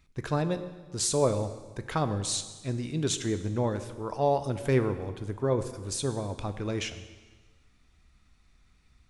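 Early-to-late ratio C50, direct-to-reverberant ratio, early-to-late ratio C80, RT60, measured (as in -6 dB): 12.0 dB, 9.5 dB, 13.0 dB, 1.4 s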